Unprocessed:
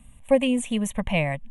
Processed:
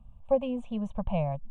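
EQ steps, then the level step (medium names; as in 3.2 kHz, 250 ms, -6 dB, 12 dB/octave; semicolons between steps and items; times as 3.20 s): tape spacing loss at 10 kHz 40 dB; static phaser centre 810 Hz, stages 4; 0.0 dB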